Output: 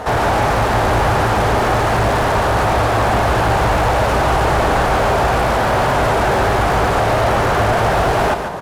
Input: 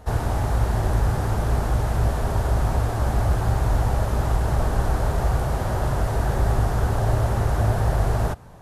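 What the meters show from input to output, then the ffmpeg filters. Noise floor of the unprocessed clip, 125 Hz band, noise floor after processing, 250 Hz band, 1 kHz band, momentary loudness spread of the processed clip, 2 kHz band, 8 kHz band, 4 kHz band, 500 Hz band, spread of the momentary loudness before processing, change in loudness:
−26 dBFS, +1.5 dB, −16 dBFS, +8.5 dB, +14.5 dB, 1 LU, +16.0 dB, +8.5 dB, +15.5 dB, +13.0 dB, 2 LU, +8.0 dB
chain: -filter_complex "[0:a]asplit=2[link_01][link_02];[link_02]highpass=frequency=720:poles=1,volume=33dB,asoftclip=type=tanh:threshold=-8dB[link_03];[link_01][link_03]amix=inputs=2:normalize=0,lowpass=frequency=2000:poles=1,volume=-6dB,aecho=1:1:143|286|429:0.398|0.111|0.0312"

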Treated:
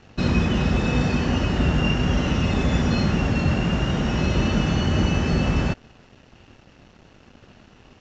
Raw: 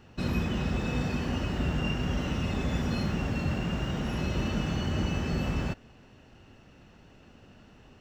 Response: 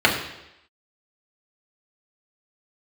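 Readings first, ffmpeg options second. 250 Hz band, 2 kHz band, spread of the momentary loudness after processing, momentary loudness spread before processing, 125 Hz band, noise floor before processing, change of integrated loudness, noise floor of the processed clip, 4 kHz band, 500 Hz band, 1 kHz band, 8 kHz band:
+8.5 dB, +9.0 dB, 2 LU, 2 LU, +8.5 dB, −55 dBFS, +8.5 dB, −53 dBFS, +9.0 dB, +9.0 dB, +8.5 dB, +8.0 dB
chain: -af "aeval=exprs='sgn(val(0))*max(abs(val(0))-0.00126,0)':channel_layout=same,aresample=16000,aresample=44100,volume=9dB"

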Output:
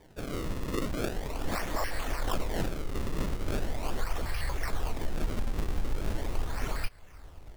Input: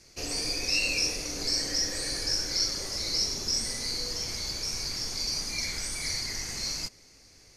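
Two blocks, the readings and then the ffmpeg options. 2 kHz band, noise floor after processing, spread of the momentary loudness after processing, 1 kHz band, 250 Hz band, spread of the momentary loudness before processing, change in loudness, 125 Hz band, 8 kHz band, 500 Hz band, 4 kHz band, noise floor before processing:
−4.5 dB, −51 dBFS, 4 LU, +8.5 dB, +5.0 dB, 6 LU, −6.5 dB, +8.0 dB, −16.0 dB, +4.5 dB, −17.0 dB, −56 dBFS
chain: -filter_complex "[0:a]asubboost=boost=10.5:cutoff=77,asplit=2[link_01][link_02];[link_02]acompressor=threshold=-34dB:ratio=6,volume=1.5dB[link_03];[link_01][link_03]amix=inputs=2:normalize=0,acrusher=samples=32:mix=1:aa=0.000001:lfo=1:lforange=51.2:lforate=0.4,volume=-7dB"

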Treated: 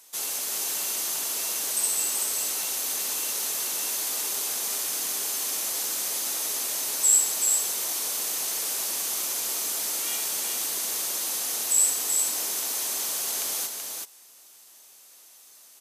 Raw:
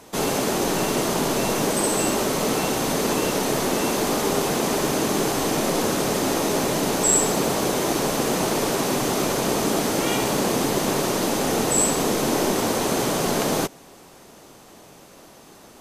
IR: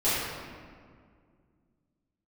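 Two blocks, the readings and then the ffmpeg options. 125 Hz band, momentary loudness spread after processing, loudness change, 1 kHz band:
below −30 dB, 5 LU, −3.0 dB, −16.0 dB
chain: -af "aderivative,aecho=1:1:380:0.596"

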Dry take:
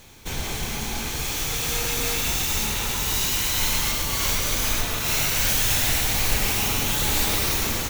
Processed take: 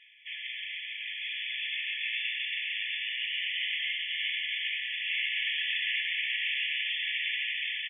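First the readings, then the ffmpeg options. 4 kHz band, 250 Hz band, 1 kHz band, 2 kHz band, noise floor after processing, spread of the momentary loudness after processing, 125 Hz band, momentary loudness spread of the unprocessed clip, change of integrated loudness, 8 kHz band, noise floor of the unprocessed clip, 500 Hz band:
−4.5 dB, below −40 dB, below −40 dB, −1.0 dB, −40 dBFS, 7 LU, below −40 dB, 8 LU, −8.5 dB, below −40 dB, −30 dBFS, below −40 dB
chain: -filter_complex "[0:a]afftfilt=real='re*between(b*sr/4096,1700,3500)':imag='im*between(b*sr/4096,1700,3500)':win_size=4096:overlap=0.75,asplit=2[link_01][link_02];[link_02]aecho=0:1:806|1612|2418:0.501|0.0802|0.0128[link_03];[link_01][link_03]amix=inputs=2:normalize=0,volume=-1dB"

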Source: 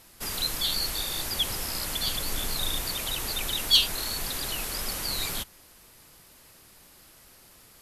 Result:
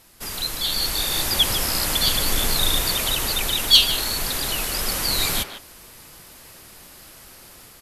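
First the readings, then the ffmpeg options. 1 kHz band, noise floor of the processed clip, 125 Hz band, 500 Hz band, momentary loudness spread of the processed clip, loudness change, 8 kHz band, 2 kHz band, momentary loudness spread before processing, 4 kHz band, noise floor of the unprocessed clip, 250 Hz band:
+8.0 dB, −46 dBFS, +8.0 dB, +8.5 dB, 11 LU, +7.5 dB, +7.5 dB, +8.0 dB, 9 LU, +7.0 dB, −55 dBFS, +8.0 dB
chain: -filter_complex "[0:a]asplit=2[link_01][link_02];[link_02]adelay=150,highpass=300,lowpass=3400,asoftclip=type=hard:threshold=-17dB,volume=-8dB[link_03];[link_01][link_03]amix=inputs=2:normalize=0,dynaudnorm=framelen=590:gausssize=3:maxgain=8dB,volume=1dB"

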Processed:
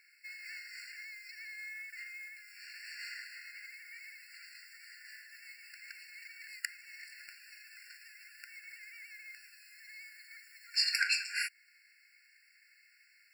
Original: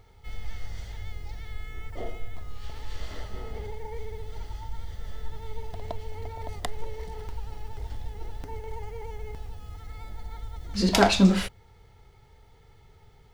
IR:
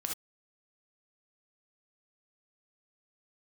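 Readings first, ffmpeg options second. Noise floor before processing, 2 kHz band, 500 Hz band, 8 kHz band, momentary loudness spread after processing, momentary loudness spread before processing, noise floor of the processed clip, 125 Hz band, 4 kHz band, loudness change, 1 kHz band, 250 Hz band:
−56 dBFS, −0.5 dB, below −40 dB, −5.5 dB, 20 LU, 19 LU, −66 dBFS, below −40 dB, −3.0 dB, −8.5 dB, −23.5 dB, below −40 dB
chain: -af "alimiter=limit=-14dB:level=0:latency=1:release=445,aeval=exprs='0.841*(cos(1*acos(clip(val(0)/0.841,-1,1)))-cos(1*PI/2))+0.075*(cos(6*acos(clip(val(0)/0.841,-1,1)))-cos(6*PI/2))':channel_layout=same,afftfilt=real='re*eq(mod(floor(b*sr/1024/1400),2),1)':imag='im*eq(mod(floor(b*sr/1024/1400),2),1)':win_size=1024:overlap=0.75,volume=5.5dB"

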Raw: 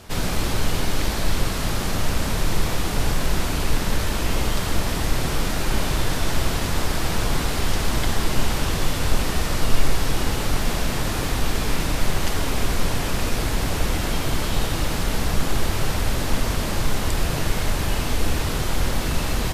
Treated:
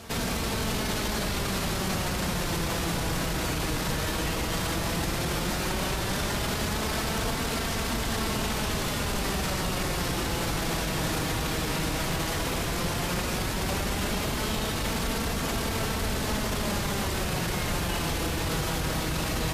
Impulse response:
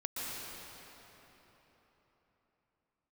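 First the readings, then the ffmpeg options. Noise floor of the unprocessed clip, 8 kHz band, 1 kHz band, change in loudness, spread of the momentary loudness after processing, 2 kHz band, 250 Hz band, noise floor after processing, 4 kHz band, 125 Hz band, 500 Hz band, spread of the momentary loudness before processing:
−25 dBFS, −3.0 dB, −2.5 dB, −4.0 dB, 0 LU, −2.5 dB, −2.5 dB, −30 dBFS, −3.0 dB, −5.5 dB, −2.5 dB, 1 LU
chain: -filter_complex "[0:a]highpass=49,alimiter=limit=-21dB:level=0:latency=1:release=19,flanger=delay=4.4:depth=1.9:regen=56:speed=0.13:shape=sinusoidal,asplit=2[link_01][link_02];[1:a]atrim=start_sample=2205,adelay=42[link_03];[link_02][link_03]afir=irnorm=-1:irlink=0,volume=-14.5dB[link_04];[link_01][link_04]amix=inputs=2:normalize=0,volume=5dB"

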